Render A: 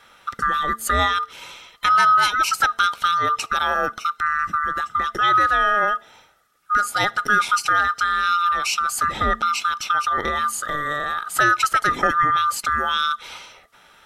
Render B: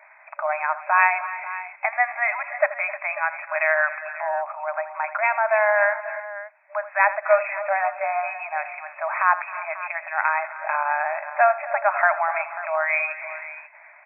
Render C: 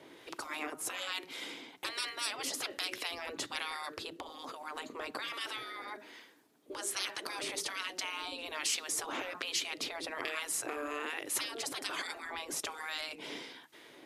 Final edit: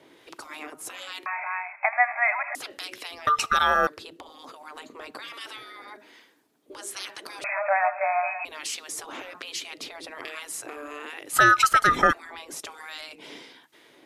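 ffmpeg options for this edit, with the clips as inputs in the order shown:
-filter_complex "[1:a]asplit=2[a][b];[0:a]asplit=2[c][d];[2:a]asplit=5[e][f][g][h][i];[e]atrim=end=1.262[j];[a]atrim=start=1.258:end=2.552[k];[f]atrim=start=2.548:end=3.272[l];[c]atrim=start=3.268:end=3.872[m];[g]atrim=start=3.868:end=7.442[n];[b]atrim=start=7.438:end=8.452[o];[h]atrim=start=8.448:end=11.332[p];[d]atrim=start=11.328:end=12.132[q];[i]atrim=start=12.128[r];[j][k]acrossfade=d=0.004:c1=hsin:c2=hsin[s];[s][l]acrossfade=d=0.004:c1=hsin:c2=hsin[t];[t][m]acrossfade=d=0.004:c1=hsin:c2=hsin[u];[u][n]acrossfade=d=0.004:c1=hsin:c2=hsin[v];[v][o]acrossfade=d=0.004:c1=hsin:c2=hsin[w];[w][p]acrossfade=d=0.004:c1=hsin:c2=hsin[x];[x][q]acrossfade=d=0.004:c1=hsin:c2=hsin[y];[y][r]acrossfade=d=0.004:c1=hsin:c2=hsin"

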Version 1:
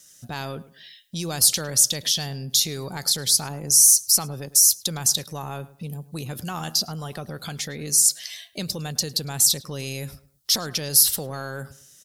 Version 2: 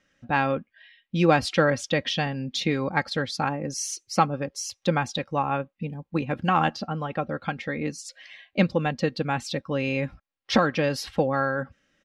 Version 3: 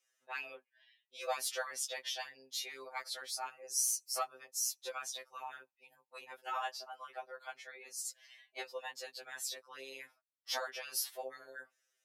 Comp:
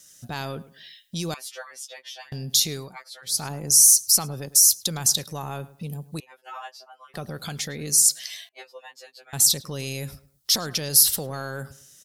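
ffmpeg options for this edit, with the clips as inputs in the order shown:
-filter_complex "[2:a]asplit=4[a][b][c][d];[0:a]asplit=5[e][f][g][h][i];[e]atrim=end=1.342[j];[a]atrim=start=1.338:end=2.322[k];[f]atrim=start=2.318:end=2.97[l];[b]atrim=start=2.73:end=3.46[m];[g]atrim=start=3.22:end=6.202[n];[c]atrim=start=6.198:end=7.142[o];[h]atrim=start=7.138:end=8.492[p];[d]atrim=start=8.488:end=9.332[q];[i]atrim=start=9.328[r];[j][k]acrossfade=d=0.004:c1=hsin:c2=hsin[s];[s][l]acrossfade=d=0.004:c1=hsin:c2=hsin[t];[t][m]acrossfade=d=0.24:c1=tri:c2=tri[u];[u][n]acrossfade=d=0.24:c1=tri:c2=tri[v];[v][o]acrossfade=d=0.004:c1=hsin:c2=hsin[w];[w][p]acrossfade=d=0.004:c1=hsin:c2=hsin[x];[x][q]acrossfade=d=0.004:c1=hsin:c2=hsin[y];[y][r]acrossfade=d=0.004:c1=hsin:c2=hsin"

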